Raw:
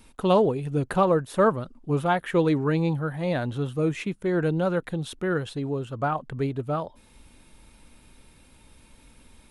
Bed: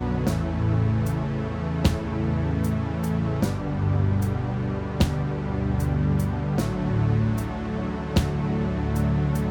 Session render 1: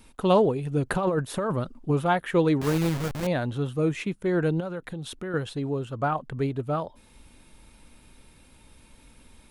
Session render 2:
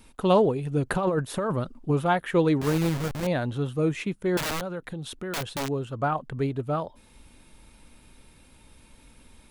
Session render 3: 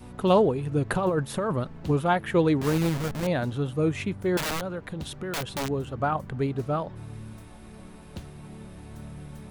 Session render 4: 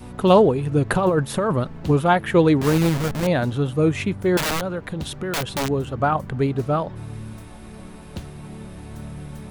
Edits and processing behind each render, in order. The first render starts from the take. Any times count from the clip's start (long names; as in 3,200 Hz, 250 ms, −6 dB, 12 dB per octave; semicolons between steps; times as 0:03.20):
0:00.86–0:01.93: compressor whose output falls as the input rises −24 dBFS; 0:02.61–0:03.27: hold until the input has moved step −26 dBFS; 0:04.60–0:05.34: downward compressor 3 to 1, threshold −32 dBFS
0:04.37–0:05.69: wrap-around overflow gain 24.5 dB
mix in bed −18.5 dB
level +6 dB